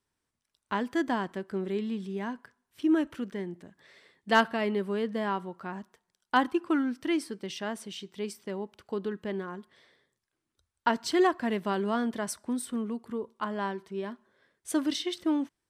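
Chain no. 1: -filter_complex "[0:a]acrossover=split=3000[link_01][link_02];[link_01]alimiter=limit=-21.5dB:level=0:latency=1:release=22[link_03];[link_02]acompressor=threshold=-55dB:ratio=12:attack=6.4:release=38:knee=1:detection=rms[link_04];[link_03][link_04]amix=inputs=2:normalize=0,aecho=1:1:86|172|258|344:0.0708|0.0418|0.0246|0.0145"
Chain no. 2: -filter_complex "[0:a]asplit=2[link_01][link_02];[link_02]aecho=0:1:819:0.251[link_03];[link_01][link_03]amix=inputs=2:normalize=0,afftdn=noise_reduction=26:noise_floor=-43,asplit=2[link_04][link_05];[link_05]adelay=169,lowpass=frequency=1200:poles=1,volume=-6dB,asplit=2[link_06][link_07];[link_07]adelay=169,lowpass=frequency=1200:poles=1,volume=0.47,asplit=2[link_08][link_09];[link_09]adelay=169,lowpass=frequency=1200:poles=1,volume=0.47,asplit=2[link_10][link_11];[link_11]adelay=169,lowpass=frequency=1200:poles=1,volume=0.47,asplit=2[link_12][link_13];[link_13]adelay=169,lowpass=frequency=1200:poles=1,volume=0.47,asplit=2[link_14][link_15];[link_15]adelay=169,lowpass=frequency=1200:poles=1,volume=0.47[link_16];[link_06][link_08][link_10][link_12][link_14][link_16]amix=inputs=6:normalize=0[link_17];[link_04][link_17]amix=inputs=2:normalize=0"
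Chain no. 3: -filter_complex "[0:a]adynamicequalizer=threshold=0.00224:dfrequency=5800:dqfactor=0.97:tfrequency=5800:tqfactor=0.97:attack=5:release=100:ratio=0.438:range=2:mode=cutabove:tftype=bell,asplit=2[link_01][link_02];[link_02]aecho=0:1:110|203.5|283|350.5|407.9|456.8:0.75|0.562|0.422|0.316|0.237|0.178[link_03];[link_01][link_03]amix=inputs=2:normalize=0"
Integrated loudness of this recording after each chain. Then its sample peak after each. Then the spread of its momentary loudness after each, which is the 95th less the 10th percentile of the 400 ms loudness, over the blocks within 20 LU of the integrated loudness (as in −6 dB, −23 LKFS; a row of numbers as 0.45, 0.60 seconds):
−33.5, −30.5, −28.0 LKFS; −20.5, −10.5, −10.5 dBFS; 11, 14, 12 LU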